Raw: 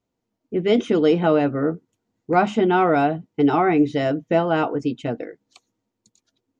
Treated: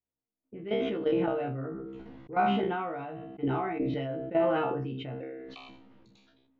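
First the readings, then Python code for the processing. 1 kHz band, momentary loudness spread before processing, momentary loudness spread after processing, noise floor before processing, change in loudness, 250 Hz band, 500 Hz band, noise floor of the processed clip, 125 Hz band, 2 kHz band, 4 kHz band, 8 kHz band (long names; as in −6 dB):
−10.0 dB, 11 LU, 17 LU, −80 dBFS, −10.5 dB, −12.0 dB, −10.5 dB, below −85 dBFS, −9.0 dB, −11.0 dB, −9.0 dB, can't be measured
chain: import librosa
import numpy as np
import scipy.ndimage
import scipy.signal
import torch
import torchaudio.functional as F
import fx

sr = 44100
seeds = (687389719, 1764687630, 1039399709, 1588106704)

p1 = scipy.signal.sosfilt(scipy.signal.butter(4, 3200.0, 'lowpass', fs=sr, output='sos'), x)
p2 = fx.low_shelf(p1, sr, hz=180.0, db=4.0)
p3 = fx.hum_notches(p2, sr, base_hz=50, count=9)
p4 = fx.level_steps(p3, sr, step_db=15)
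p5 = fx.comb_fb(p4, sr, f0_hz=66.0, decay_s=0.32, harmonics='all', damping=0.0, mix_pct=100)
p6 = p5 + fx.echo_single(p5, sr, ms=109, db=-21.5, dry=0)
y = fx.sustainer(p6, sr, db_per_s=24.0)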